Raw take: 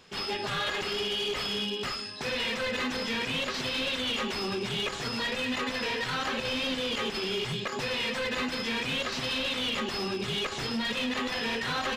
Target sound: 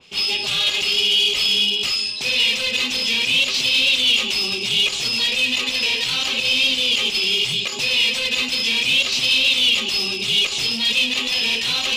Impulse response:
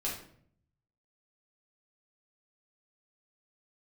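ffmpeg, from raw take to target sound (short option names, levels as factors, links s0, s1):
-af "highshelf=f=2100:t=q:w=3:g=6.5,areverse,acompressor=mode=upward:threshold=0.0447:ratio=2.5,areverse,adynamicequalizer=threshold=0.0158:dfrequency=2700:dqfactor=0.7:tfrequency=2700:tqfactor=0.7:attack=5:release=100:ratio=0.375:range=4:mode=boostabove:tftype=highshelf"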